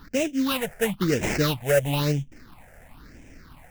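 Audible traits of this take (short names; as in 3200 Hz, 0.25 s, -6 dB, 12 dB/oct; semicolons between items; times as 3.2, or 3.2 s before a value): aliases and images of a low sample rate 3300 Hz, jitter 20%; phasing stages 6, 1 Hz, lowest notch 280–1200 Hz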